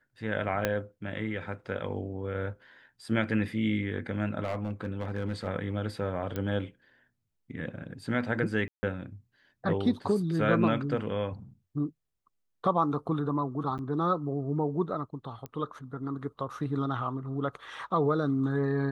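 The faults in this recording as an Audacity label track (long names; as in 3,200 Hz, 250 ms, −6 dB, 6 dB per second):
0.650000	0.650000	click −12 dBFS
4.430000	5.480000	clipping −26 dBFS
6.360000	6.360000	click −20 dBFS
8.680000	8.830000	drop-out 150 ms
13.780000	13.790000	drop-out 9.1 ms
15.460000	15.460000	click −25 dBFS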